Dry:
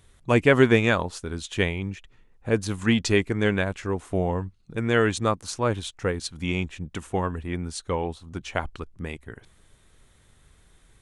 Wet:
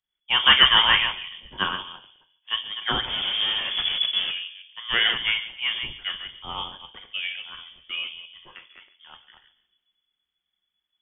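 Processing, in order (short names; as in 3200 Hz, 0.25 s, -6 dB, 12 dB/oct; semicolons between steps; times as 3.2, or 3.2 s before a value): reverse delay 0.14 s, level -6 dB; low shelf 280 Hz -9.5 dB; 3.07–4.31 Schmitt trigger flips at -35.5 dBFS; 8.25–9.12 compressor 5:1, threshold -35 dBFS, peak gain reduction 12.5 dB; tape echo 0.144 s, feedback 68%, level -11 dB, low-pass 1300 Hz; shoebox room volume 280 m³, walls furnished, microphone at 0.9 m; inverted band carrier 3400 Hz; three-band expander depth 70%; gain -2 dB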